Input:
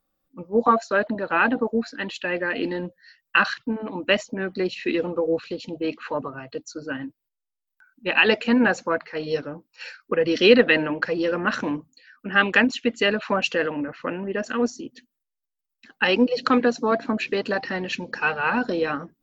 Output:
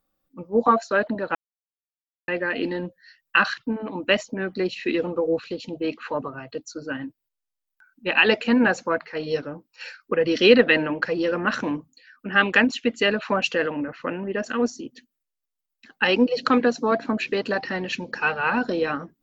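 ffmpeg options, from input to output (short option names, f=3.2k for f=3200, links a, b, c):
-filter_complex "[0:a]asplit=3[a][b][c];[a]atrim=end=1.35,asetpts=PTS-STARTPTS,afade=t=out:st=1.346:d=0.004:c=hsin[d];[b]atrim=start=1.35:end=2.28,asetpts=PTS-STARTPTS,volume=0[e];[c]atrim=start=2.28,asetpts=PTS-STARTPTS,afade=t=in:d=0.004:c=hsin[f];[d][e][f]concat=n=3:v=0:a=1"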